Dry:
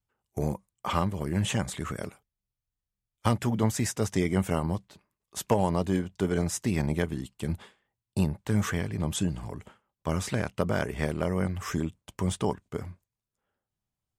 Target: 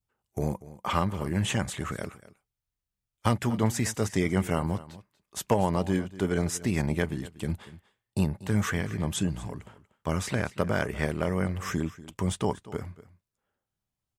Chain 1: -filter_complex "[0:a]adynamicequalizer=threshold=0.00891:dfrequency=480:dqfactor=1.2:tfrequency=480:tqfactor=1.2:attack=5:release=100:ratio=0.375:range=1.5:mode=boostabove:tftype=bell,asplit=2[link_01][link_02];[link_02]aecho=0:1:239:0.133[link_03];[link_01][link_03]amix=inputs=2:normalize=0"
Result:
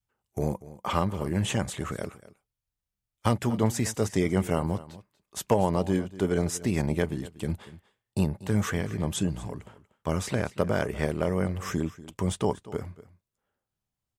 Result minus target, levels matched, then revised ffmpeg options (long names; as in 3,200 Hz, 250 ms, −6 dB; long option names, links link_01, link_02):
2,000 Hz band −3.0 dB
-filter_complex "[0:a]adynamicequalizer=threshold=0.00891:dfrequency=1800:dqfactor=1.2:tfrequency=1800:tqfactor=1.2:attack=5:release=100:ratio=0.375:range=1.5:mode=boostabove:tftype=bell,asplit=2[link_01][link_02];[link_02]aecho=0:1:239:0.133[link_03];[link_01][link_03]amix=inputs=2:normalize=0"